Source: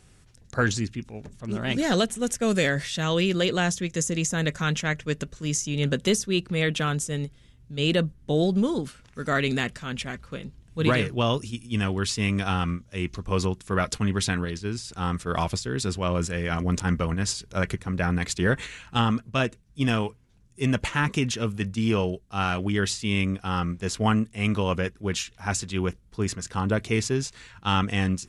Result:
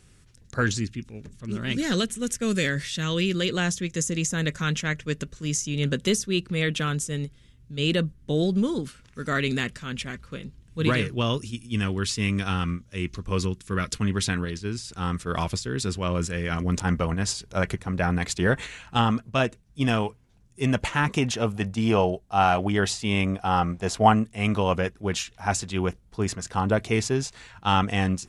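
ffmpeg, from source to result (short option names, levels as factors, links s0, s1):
-af "asetnsamples=n=441:p=0,asendcmd='0.85 equalizer g -13;3.54 equalizer g -6.5;13.4 equalizer g -14;13.99 equalizer g -3.5;16.78 equalizer g 4.5;21.18 equalizer g 13;24.14 equalizer g 7',equalizer=f=740:t=o:w=0.82:g=-6"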